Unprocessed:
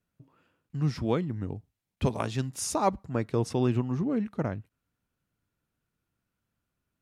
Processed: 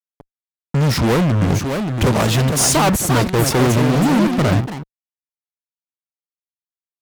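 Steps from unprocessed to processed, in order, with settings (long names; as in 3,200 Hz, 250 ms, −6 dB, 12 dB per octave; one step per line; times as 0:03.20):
fuzz pedal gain 41 dB, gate −44 dBFS
delay with pitch and tempo change per echo 787 ms, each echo +3 semitones, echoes 2, each echo −6 dB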